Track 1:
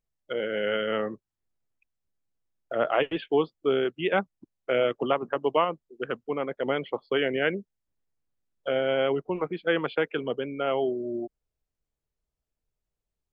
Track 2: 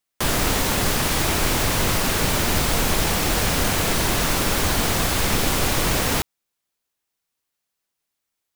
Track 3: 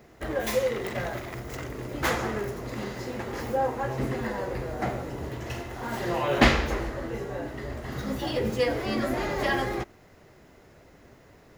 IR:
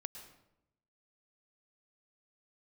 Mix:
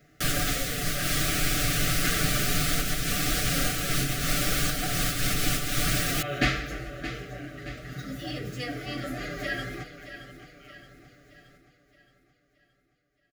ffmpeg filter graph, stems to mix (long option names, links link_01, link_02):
-filter_complex "[0:a]highpass=frequency=1400:width=0.5412,highpass=frequency=1400:width=1.3066,alimiter=limit=-22.5dB:level=0:latency=1:release=292,volume=-18dB,asplit=2[link_01][link_02];[1:a]volume=-6dB[link_03];[2:a]volume=-5dB,asplit=2[link_04][link_05];[link_05]volume=-12dB[link_06];[link_02]apad=whole_len=377164[link_07];[link_03][link_07]sidechaincompress=threshold=-55dB:ratio=3:attack=16:release=194[link_08];[link_06]aecho=0:1:622|1244|1866|2488|3110|3732|4354:1|0.49|0.24|0.118|0.0576|0.0282|0.0138[link_09];[link_01][link_08][link_04][link_09]amix=inputs=4:normalize=0,asuperstop=centerf=940:order=12:qfactor=2.3,equalizer=frequency=480:width=1.6:gain=-8.5,aecho=1:1:6.8:0.75"